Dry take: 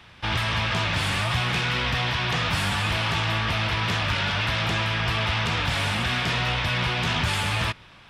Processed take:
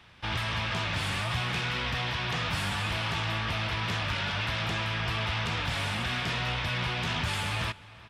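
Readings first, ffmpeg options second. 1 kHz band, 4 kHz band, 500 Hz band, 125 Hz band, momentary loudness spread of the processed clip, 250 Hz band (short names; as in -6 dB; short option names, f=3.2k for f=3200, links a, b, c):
-6.0 dB, -6.0 dB, -6.0 dB, -6.0 dB, 1 LU, -6.0 dB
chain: -filter_complex "[0:a]asplit=2[a][b];[b]adelay=355.7,volume=-19dB,highshelf=f=4k:g=-8[c];[a][c]amix=inputs=2:normalize=0,volume=-6dB"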